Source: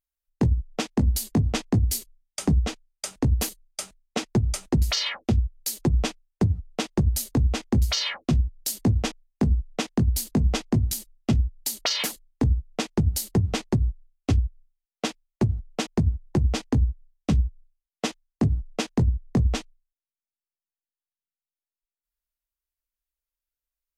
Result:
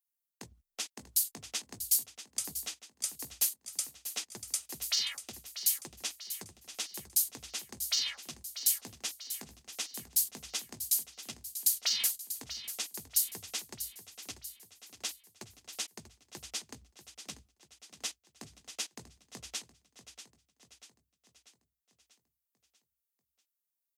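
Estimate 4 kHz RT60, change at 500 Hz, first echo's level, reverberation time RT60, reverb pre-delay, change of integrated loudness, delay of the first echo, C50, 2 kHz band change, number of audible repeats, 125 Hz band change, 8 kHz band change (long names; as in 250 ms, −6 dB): no reverb audible, −23.5 dB, −11.5 dB, no reverb audible, no reverb audible, −7.5 dB, 640 ms, no reverb audible, −10.0 dB, 5, −36.0 dB, +1.0 dB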